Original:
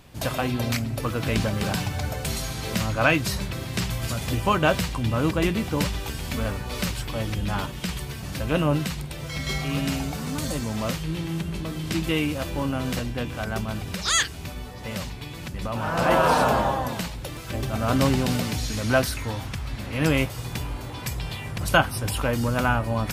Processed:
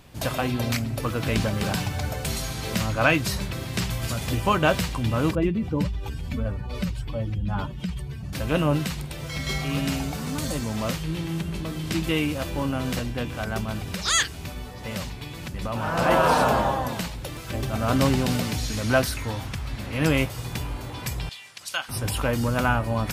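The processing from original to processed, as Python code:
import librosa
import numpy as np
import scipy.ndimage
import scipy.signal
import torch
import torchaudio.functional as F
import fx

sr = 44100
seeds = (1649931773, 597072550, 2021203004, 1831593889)

y = fx.spec_expand(x, sr, power=1.6, at=(5.35, 8.33))
y = fx.bandpass_q(y, sr, hz=5300.0, q=0.85, at=(21.29, 21.89))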